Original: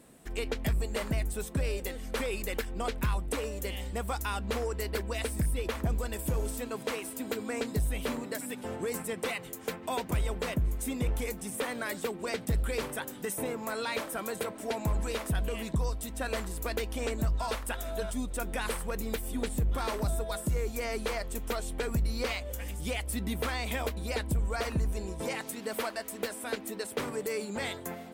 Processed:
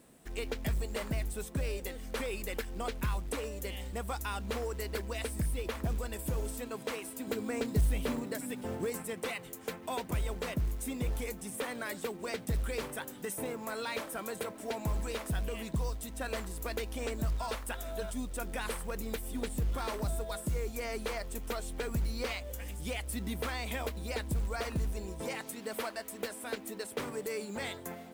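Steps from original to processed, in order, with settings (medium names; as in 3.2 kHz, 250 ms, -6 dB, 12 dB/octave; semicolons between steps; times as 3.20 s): 7.27–8.90 s: bass shelf 390 Hz +6 dB; companded quantiser 6-bit; trim -3.5 dB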